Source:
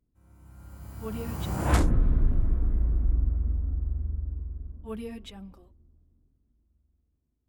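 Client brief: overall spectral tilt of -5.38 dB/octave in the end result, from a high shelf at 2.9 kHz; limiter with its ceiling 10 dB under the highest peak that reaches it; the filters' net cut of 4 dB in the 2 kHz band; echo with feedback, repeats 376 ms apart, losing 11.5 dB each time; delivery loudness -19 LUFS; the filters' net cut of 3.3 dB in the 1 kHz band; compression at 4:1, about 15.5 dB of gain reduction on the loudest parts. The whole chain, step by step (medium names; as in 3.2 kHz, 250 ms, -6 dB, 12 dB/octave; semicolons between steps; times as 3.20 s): peaking EQ 1 kHz -3.5 dB; peaking EQ 2 kHz -6 dB; treble shelf 2.9 kHz +5.5 dB; compression 4:1, threshold -37 dBFS; peak limiter -36.5 dBFS; feedback delay 376 ms, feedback 27%, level -11.5 dB; trim +27 dB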